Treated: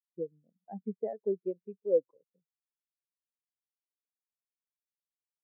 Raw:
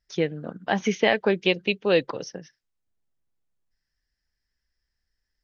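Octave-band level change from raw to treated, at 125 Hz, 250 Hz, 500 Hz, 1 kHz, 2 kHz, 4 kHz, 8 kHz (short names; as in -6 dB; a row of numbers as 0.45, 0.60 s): under -15 dB, -13.5 dB, -8.0 dB, under -20 dB, under -40 dB, under -40 dB, n/a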